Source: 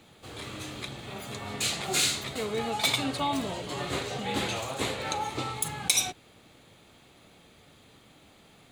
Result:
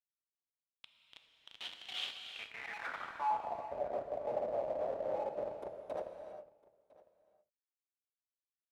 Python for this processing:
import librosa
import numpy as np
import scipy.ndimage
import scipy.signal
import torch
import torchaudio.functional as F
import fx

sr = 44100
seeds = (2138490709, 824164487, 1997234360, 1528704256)

p1 = scipy.signal.sosfilt(scipy.signal.butter(4, 130.0, 'highpass', fs=sr, output='sos'), x)
p2 = fx.band_shelf(p1, sr, hz=3300.0, db=-8.0, octaves=2.9)
p3 = fx.notch(p2, sr, hz=6000.0, q=13.0)
p4 = fx.rider(p3, sr, range_db=5, speed_s=0.5)
p5 = p3 + F.gain(torch.from_numpy(p4), -2.0).numpy()
p6 = fx.filter_sweep_highpass(p5, sr, from_hz=670.0, to_hz=280.0, start_s=4.64, end_s=6.56, q=1.9)
p7 = fx.schmitt(p6, sr, flips_db=-23.0)
p8 = fx.filter_sweep_bandpass(p7, sr, from_hz=3200.0, to_hz=600.0, start_s=2.19, end_s=3.7, q=6.9)
p9 = p8 + 10.0 ** (-23.0 / 20.0) * np.pad(p8, (int(1004 * sr / 1000.0), 0))[:len(p8)]
p10 = fx.rev_gated(p9, sr, seeds[0], gate_ms=430, shape='flat', drr_db=4.5)
y = F.gain(torch.from_numpy(p10), 4.5).numpy()